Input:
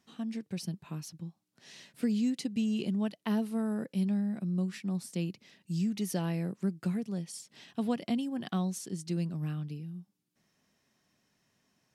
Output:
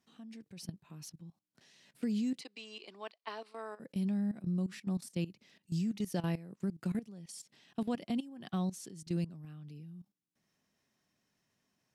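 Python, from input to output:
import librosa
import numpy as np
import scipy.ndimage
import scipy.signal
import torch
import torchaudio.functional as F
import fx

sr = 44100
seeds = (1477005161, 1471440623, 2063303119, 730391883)

y = fx.level_steps(x, sr, step_db=16)
y = fx.cabinet(y, sr, low_hz=450.0, low_slope=24, high_hz=7500.0, hz=(540.0, 1100.0, 2300.0, 4400.0, 6500.0), db=(-5, 6, 5, 7, -9), at=(2.41, 3.8))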